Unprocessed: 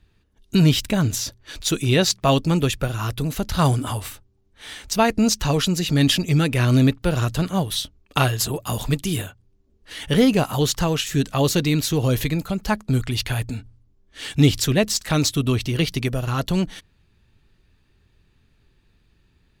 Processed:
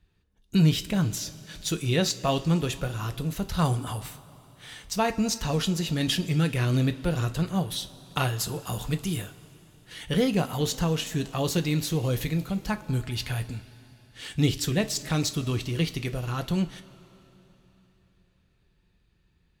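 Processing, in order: two-slope reverb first 0.25 s, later 3.7 s, from -18 dB, DRR 8 dB; trim -7.5 dB

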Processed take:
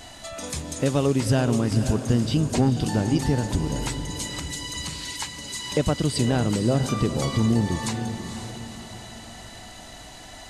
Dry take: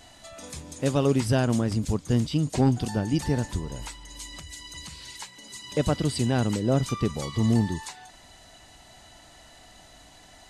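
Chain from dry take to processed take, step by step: compression 2:1, threshold -31 dBFS, peak gain reduction 8.5 dB; on a send: echo that smears into a reverb 497 ms, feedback 45%, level -8.5 dB; on the sum: trim +8 dB

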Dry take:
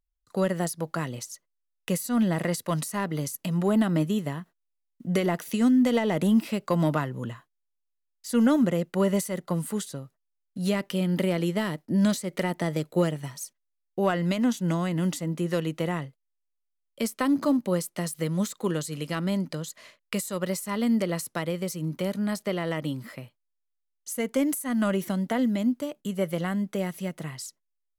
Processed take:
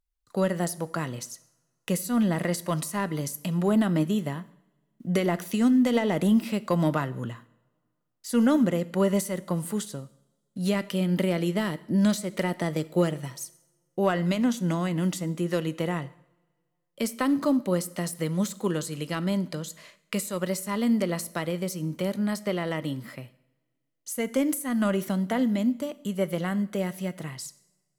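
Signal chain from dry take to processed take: two-slope reverb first 0.67 s, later 2 s, from -21 dB, DRR 15 dB

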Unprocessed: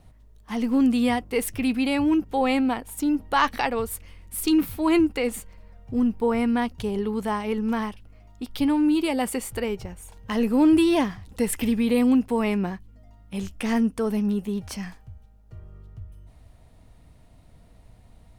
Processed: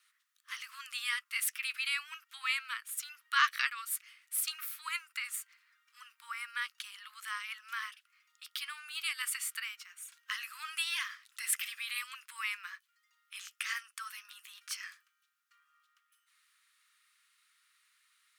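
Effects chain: steep high-pass 1.2 kHz 72 dB/octave; 4.43–6.54 s: dynamic bell 3.3 kHz, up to -5 dB, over -46 dBFS, Q 0.79; trim -1.5 dB

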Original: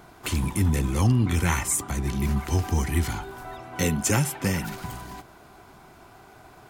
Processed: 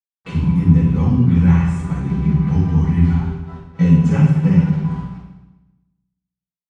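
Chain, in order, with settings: gate -36 dBFS, range -18 dB; peaking EQ 170 Hz +11 dB 0.6 oct; in parallel at 0 dB: compression, threshold -30 dBFS, peak gain reduction 16 dB; on the sum: bit crusher 7-bit; tape spacing loss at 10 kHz 32 dB; reverberation RT60 1.0 s, pre-delay 3 ms, DRR -9 dB; trim -8.5 dB

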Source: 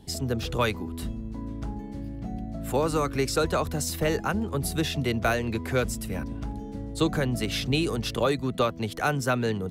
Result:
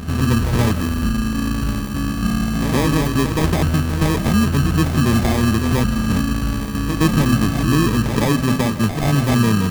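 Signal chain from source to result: rattle on loud lows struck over -37 dBFS, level -25 dBFS; low-pass 3.2 kHz 24 dB/octave; resonant low shelf 350 Hz +8.5 dB, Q 1.5; de-hum 130.1 Hz, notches 2; in parallel at +2 dB: peak limiter -14.5 dBFS, peak gain reduction 7.5 dB; on the sum: sample-and-hold 31×; reverse echo 123 ms -8.5 dB; on a send at -14 dB: reverberation, pre-delay 110 ms; on the sum: trim -2.5 dB

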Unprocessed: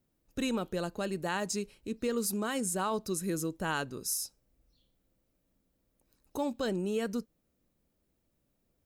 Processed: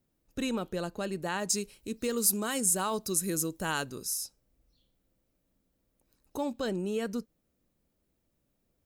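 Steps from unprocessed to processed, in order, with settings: 1.49–4.05 s: treble shelf 4.8 kHz +11 dB

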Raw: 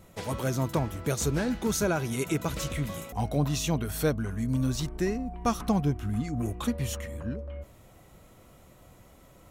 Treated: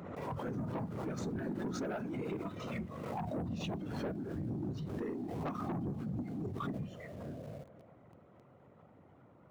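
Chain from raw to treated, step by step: low-pass 1.4 kHz 12 dB/octave; two-band feedback delay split 330 Hz, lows 118 ms, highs 219 ms, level -13.5 dB; whisper effect; in parallel at -11.5 dB: bit crusher 7-bit; on the sum: spectral noise reduction 10 dB; compression 2:1, threshold -48 dBFS, peak gain reduction 16.5 dB; high-pass 89 Hz 24 dB/octave; saturation -37 dBFS, distortion -12 dB; swell ahead of each attack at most 32 dB/s; trim +4.5 dB

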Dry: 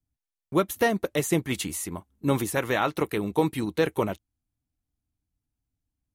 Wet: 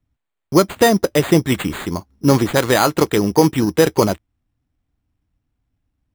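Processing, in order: treble shelf 3.6 kHz -9.5 dB; in parallel at +0.5 dB: peak limiter -16 dBFS, peak gain reduction 5 dB; on the sum: sample-and-hold 8×; trim +5.5 dB

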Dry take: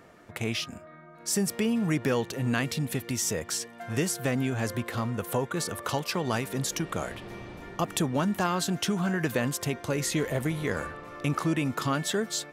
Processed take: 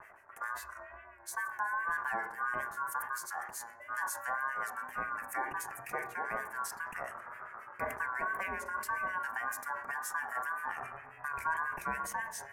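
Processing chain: Chebyshev band-stop 780–9600 Hz, order 2; bass shelf 150 Hz +7.5 dB; de-hum 48.22 Hz, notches 21; reverse; upward compressor, threshold -32 dBFS; reverse; ring modulator 1.3 kHz; wow and flutter 66 cents; harmonic tremolo 7.4 Hz, depth 100%, crossover 1.5 kHz; on a send at -11 dB: reverberation RT60 1.2 s, pre-delay 3 ms; on the sum: decay stretcher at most 87 dB/s; trim -1 dB

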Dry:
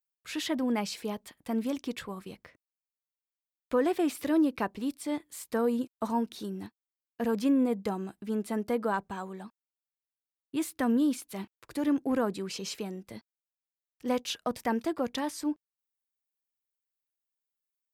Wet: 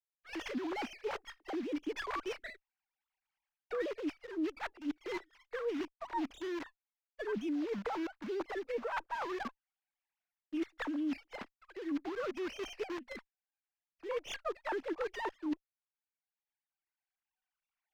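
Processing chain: formants replaced by sine waves; recorder AGC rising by 6.4 dB/s; in parallel at -5 dB: word length cut 6-bit, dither none; on the sum: tilt shelf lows -7 dB, about 1.1 kHz; reverse; compression 10:1, threshold -35 dBFS, peak gain reduction 22 dB; reverse; distance through air 300 m; sliding maximum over 5 samples; trim +2 dB

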